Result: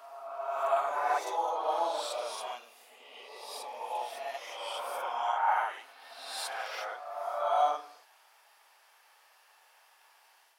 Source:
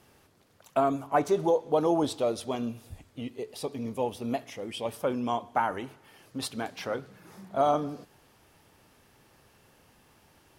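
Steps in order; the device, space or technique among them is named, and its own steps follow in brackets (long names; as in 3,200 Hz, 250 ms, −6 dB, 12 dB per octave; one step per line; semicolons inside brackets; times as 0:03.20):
ghost voice (reversed playback; convolution reverb RT60 1.7 s, pre-delay 32 ms, DRR −6 dB; reversed playback; high-pass filter 740 Hz 24 dB per octave)
level −5 dB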